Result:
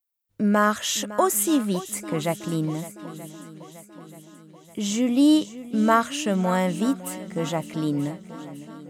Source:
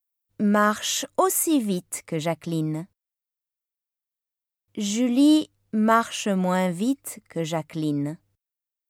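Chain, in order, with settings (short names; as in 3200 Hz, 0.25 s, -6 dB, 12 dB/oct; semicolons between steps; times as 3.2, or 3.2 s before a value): swung echo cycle 0.93 s, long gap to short 1.5:1, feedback 49%, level -15.5 dB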